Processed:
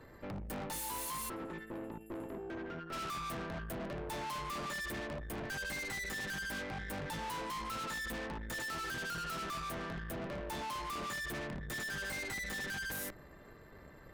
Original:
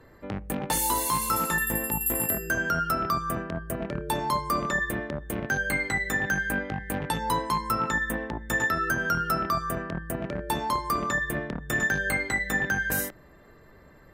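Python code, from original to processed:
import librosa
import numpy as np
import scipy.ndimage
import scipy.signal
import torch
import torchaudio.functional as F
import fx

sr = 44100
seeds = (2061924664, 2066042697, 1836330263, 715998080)

y = fx.bandpass_q(x, sr, hz=350.0, q=2.4, at=(1.28, 2.92), fade=0.02)
y = fx.tube_stage(y, sr, drive_db=41.0, bias=0.7)
y = y * librosa.db_to_amplitude(2.0)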